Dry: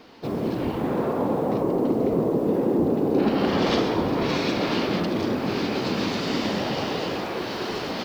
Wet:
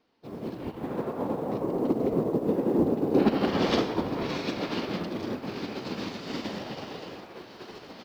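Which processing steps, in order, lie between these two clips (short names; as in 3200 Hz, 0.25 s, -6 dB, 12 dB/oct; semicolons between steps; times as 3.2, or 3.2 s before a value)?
upward expander 2.5:1, over -34 dBFS; gain +1 dB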